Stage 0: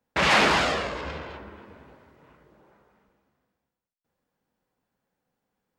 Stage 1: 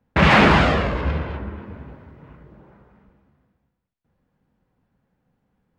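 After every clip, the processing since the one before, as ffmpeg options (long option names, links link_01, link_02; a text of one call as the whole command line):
ffmpeg -i in.wav -af "bass=frequency=250:gain=12,treble=frequency=4000:gain=-13,volume=5.5dB" out.wav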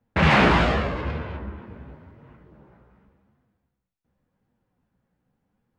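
ffmpeg -i in.wav -af "flanger=delay=8.4:depth=8.9:regen=41:speed=0.88:shape=sinusoidal" out.wav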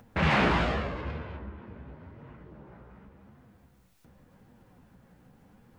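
ffmpeg -i in.wav -af "acompressor=mode=upward:threshold=-31dB:ratio=2.5,volume=-7dB" out.wav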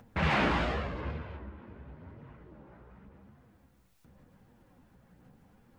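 ffmpeg -i in.wav -af "aphaser=in_gain=1:out_gain=1:delay=3.7:decay=0.25:speed=0.95:type=sinusoidal,volume=-3.5dB" out.wav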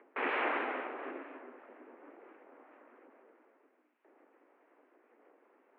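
ffmpeg -i in.wav -af "aeval=exprs='abs(val(0))':channel_layout=same,highpass=frequency=150:width_type=q:width=0.5412,highpass=frequency=150:width_type=q:width=1.307,lowpass=frequency=2400:width_type=q:width=0.5176,lowpass=frequency=2400:width_type=q:width=0.7071,lowpass=frequency=2400:width_type=q:width=1.932,afreqshift=120" out.wav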